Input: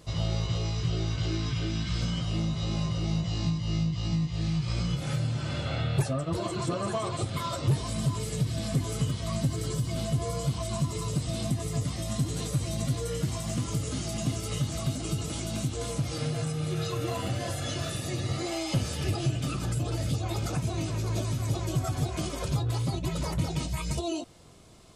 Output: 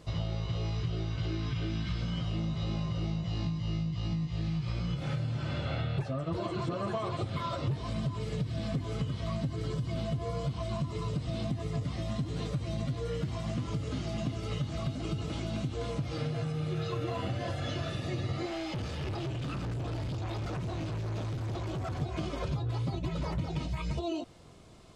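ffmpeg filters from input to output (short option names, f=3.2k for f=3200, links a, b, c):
-filter_complex "[0:a]asettb=1/sr,asplit=3[a][b][c];[a]atrim=end=18.464[d];[b]atrim=start=18.46:end=22.02,asetpts=PTS-STARTPTS,afade=t=in:d=0.004:c=qsin,afade=t=out:st=3.556:d=0.004:c=qsin,volume=32.5dB,asoftclip=hard,volume=-32.5dB[e];[c]atrim=start=22.016[f];[d][e]acrossfade=d=0.004:c1=hsin:c2=qsin[g];[g][f]acrossfade=d=0.004:c1=qsin:c2=hsin,acrossover=split=5200[h][i];[i]acompressor=threshold=-57dB:ratio=4:attack=1:release=60[j];[h][j]amix=inputs=2:normalize=0,highshelf=f=6.7k:g=-11,acompressor=threshold=-29dB:ratio=6"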